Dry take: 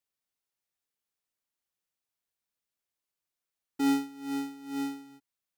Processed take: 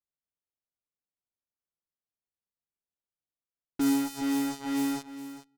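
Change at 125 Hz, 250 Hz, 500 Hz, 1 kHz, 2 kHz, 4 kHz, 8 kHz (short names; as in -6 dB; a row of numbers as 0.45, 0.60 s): +7.0, +3.5, +3.0, +1.0, +3.0, +4.0, +8.5 dB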